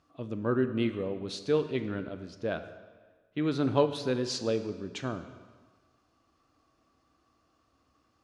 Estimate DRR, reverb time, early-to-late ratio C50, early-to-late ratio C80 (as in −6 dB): 9.0 dB, 1.5 s, 10.5 dB, 12.0 dB